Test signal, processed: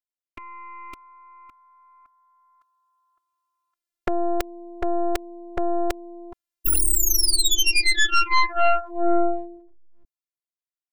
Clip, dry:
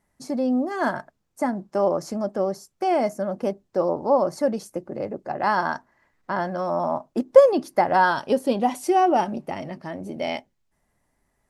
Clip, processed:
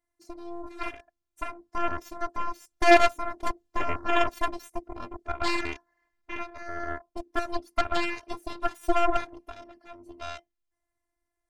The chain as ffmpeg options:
-af "dynaudnorm=f=240:g=17:m=16dB,afftfilt=real='hypot(re,im)*cos(PI*b)':imag='0':win_size=512:overlap=0.75,aeval=exprs='0.841*(cos(1*acos(clip(val(0)/0.841,-1,1)))-cos(1*PI/2))+0.188*(cos(3*acos(clip(val(0)/0.841,-1,1)))-cos(3*PI/2))+0.106*(cos(6*acos(clip(val(0)/0.841,-1,1)))-cos(6*PI/2))+0.188*(cos(8*acos(clip(val(0)/0.841,-1,1)))-cos(8*PI/2))':c=same"

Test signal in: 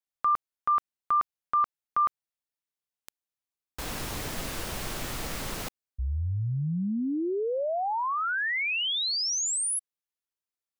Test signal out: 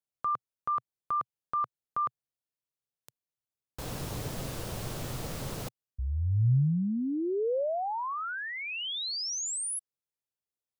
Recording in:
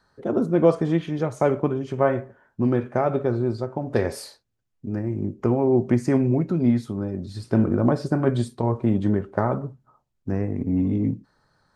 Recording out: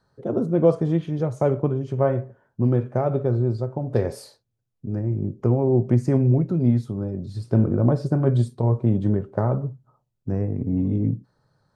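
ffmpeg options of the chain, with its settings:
-af "equalizer=f=125:t=o:w=1:g=11,equalizer=f=500:t=o:w=1:g=5,equalizer=f=2k:t=o:w=1:g=-4,volume=-5dB"

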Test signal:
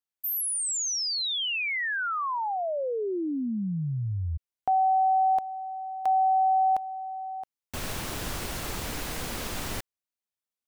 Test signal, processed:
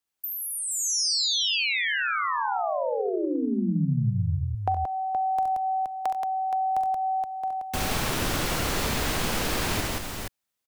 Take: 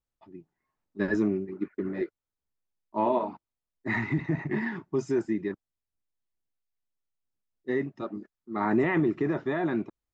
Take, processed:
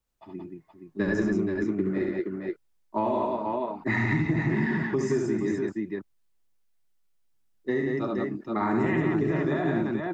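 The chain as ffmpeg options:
-filter_complex "[0:a]aecho=1:1:43|69|92|177|472:0.266|0.668|0.224|0.708|0.447,acrossover=split=130|5500[a][b][c];[a]acompressor=threshold=-35dB:ratio=4[d];[b]acompressor=threshold=-31dB:ratio=4[e];[c]acompressor=threshold=-40dB:ratio=4[f];[d][e][f]amix=inputs=3:normalize=0,volume=6dB"

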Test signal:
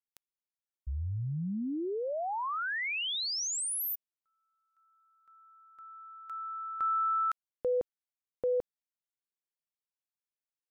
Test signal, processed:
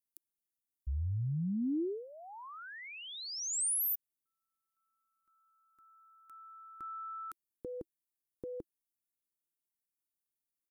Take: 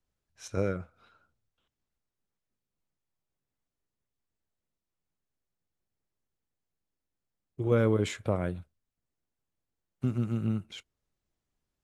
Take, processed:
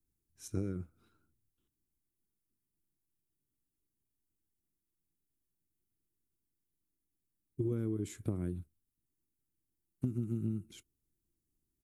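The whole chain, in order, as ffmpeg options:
-af "firequalizer=gain_entry='entry(220,0);entry(330,5);entry(540,-18);entry(910,-14);entry(2900,-13);entry(10000,6)':delay=0.05:min_phase=1,acompressor=threshold=-31dB:ratio=12:attack=33:release=267:knee=1:detection=rms"

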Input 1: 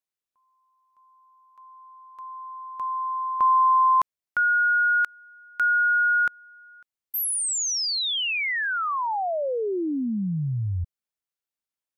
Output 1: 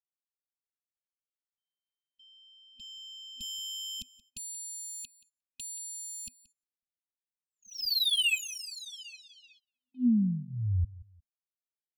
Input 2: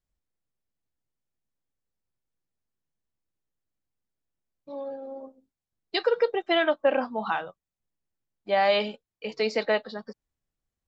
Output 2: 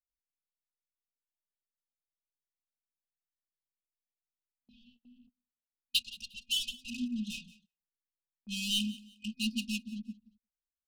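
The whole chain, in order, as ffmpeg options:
-af "lowpass=f=5.2k:w=0.5412,lowpass=f=5.2k:w=1.3066,adynamicequalizer=threshold=0.00631:dfrequency=3500:dqfactor=1.3:tfrequency=3500:tqfactor=1.3:attack=5:release=100:ratio=0.375:range=2:mode=cutabove:tftype=bell,adynamicsmooth=sensitivity=5.5:basefreq=930,afftfilt=real='re*(1-between(b*sr/4096,250,2500))':imag='im*(1-between(b*sr/4096,250,2500))':win_size=4096:overlap=0.75,equalizer=f=740:w=0.4:g=-2,aecho=1:1:3.6:0.96,aecho=1:1:178|356:0.1|0.027,agate=range=-24dB:threshold=-60dB:ratio=16:release=188:detection=rms"

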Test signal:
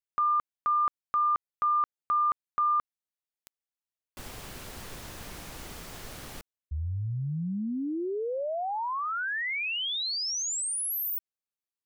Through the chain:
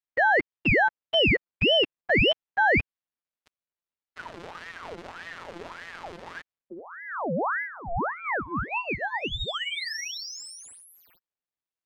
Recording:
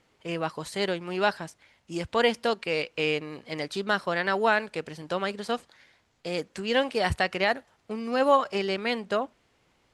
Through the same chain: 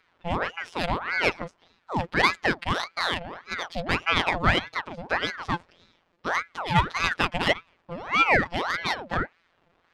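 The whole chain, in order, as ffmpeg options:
-af "adynamicsmooth=sensitivity=2:basefreq=3k,afftfilt=real='hypot(re,im)*cos(PI*b)':imag='0':win_size=1024:overlap=0.75,aeval=exprs='val(0)*sin(2*PI*1100*n/s+1100*0.7/1.7*sin(2*PI*1.7*n/s))':c=same,volume=8.5dB"

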